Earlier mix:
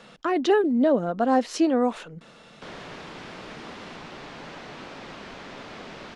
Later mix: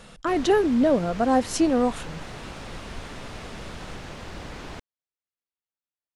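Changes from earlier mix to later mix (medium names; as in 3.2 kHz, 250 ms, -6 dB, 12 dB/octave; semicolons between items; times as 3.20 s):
background: entry -2.35 s; master: remove three-band isolator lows -19 dB, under 150 Hz, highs -15 dB, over 6.1 kHz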